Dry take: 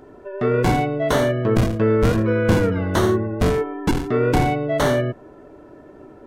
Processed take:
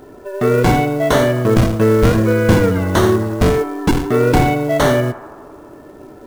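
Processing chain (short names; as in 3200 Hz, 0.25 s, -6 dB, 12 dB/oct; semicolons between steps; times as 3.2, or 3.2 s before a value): companded quantiser 6-bit; narrowing echo 86 ms, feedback 80%, band-pass 970 Hz, level -14 dB; gain +5 dB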